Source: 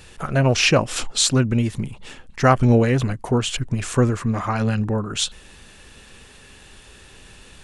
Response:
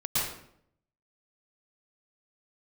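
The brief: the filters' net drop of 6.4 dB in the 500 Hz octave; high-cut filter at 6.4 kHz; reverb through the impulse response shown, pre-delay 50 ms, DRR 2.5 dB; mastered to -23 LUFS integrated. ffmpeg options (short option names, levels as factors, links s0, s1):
-filter_complex "[0:a]lowpass=6400,equalizer=f=500:t=o:g=-8,asplit=2[s0][s1];[1:a]atrim=start_sample=2205,adelay=50[s2];[s1][s2]afir=irnorm=-1:irlink=0,volume=0.266[s3];[s0][s3]amix=inputs=2:normalize=0,volume=0.631"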